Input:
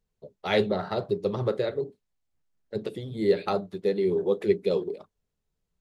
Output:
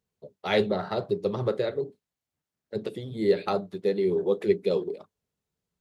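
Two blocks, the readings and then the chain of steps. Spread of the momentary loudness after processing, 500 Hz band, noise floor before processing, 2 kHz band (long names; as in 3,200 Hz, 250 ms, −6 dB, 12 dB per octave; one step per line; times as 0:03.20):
12 LU, 0.0 dB, −81 dBFS, 0.0 dB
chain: high-pass filter 86 Hz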